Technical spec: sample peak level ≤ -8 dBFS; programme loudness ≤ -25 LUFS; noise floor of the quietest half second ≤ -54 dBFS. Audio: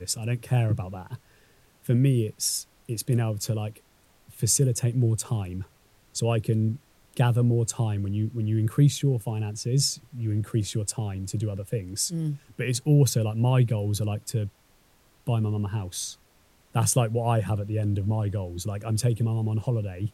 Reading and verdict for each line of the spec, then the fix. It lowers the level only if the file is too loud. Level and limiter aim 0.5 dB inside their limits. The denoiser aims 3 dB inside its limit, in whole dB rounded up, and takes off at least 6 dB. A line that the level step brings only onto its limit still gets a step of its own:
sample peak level -9.0 dBFS: OK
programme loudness -26.5 LUFS: OK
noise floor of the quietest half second -61 dBFS: OK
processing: none

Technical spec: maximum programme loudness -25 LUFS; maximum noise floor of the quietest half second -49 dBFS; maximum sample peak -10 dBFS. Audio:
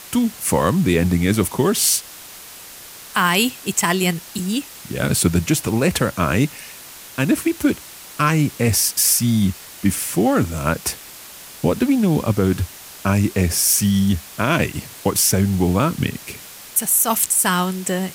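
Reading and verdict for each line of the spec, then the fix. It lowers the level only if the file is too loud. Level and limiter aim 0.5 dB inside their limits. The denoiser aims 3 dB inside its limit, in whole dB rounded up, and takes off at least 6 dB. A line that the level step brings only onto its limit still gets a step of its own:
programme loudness -18.5 LUFS: fail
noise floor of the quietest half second -39 dBFS: fail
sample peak -3.5 dBFS: fail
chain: denoiser 6 dB, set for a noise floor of -39 dBFS; gain -7 dB

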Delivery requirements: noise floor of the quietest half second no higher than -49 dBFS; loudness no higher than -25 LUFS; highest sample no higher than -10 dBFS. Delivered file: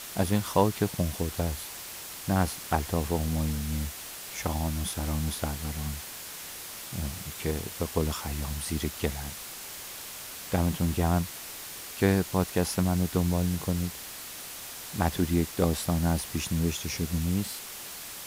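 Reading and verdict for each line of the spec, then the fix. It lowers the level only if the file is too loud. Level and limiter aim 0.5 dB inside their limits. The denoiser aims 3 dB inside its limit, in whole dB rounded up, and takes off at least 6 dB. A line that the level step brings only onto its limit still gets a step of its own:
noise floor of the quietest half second -41 dBFS: fail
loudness -30.0 LUFS: OK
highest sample -8.0 dBFS: fail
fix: denoiser 11 dB, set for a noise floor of -41 dBFS; limiter -10.5 dBFS

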